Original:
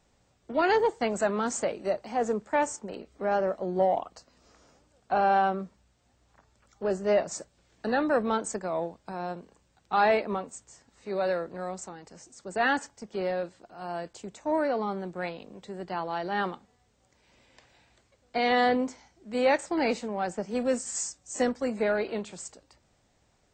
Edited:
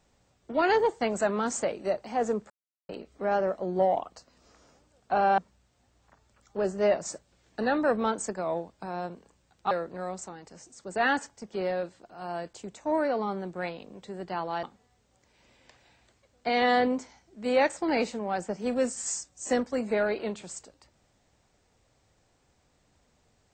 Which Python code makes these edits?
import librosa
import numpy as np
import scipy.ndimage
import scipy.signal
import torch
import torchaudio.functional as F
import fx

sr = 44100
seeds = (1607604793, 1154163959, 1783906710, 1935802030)

y = fx.edit(x, sr, fx.silence(start_s=2.5, length_s=0.39),
    fx.cut(start_s=5.38, length_s=0.26),
    fx.cut(start_s=9.97, length_s=1.34),
    fx.cut(start_s=16.23, length_s=0.29), tone=tone)